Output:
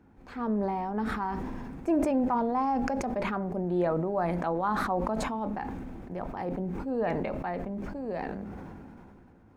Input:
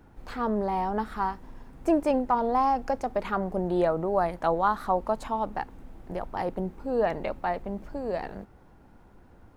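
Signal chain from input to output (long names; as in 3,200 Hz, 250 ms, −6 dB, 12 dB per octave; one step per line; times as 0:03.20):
spectral tilt −2.5 dB per octave
convolution reverb RT60 0.45 s, pre-delay 3 ms, DRR 14 dB
level that may fall only so fast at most 20 dB per second
level −4.5 dB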